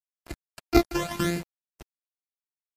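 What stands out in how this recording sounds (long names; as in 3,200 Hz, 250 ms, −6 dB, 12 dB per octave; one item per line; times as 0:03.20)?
a buzz of ramps at a fixed pitch in blocks of 128 samples
phaser sweep stages 12, 0.9 Hz, lowest notch 160–1,100 Hz
a quantiser's noise floor 8 bits, dither none
MP3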